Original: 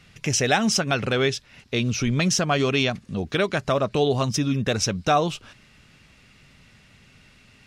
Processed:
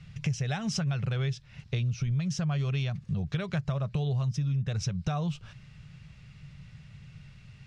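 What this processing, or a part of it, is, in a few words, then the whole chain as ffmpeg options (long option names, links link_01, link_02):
jukebox: -af "lowpass=7400,lowshelf=frequency=200:width_type=q:width=3:gain=10,acompressor=threshold=-22dB:ratio=6,volume=-5.5dB"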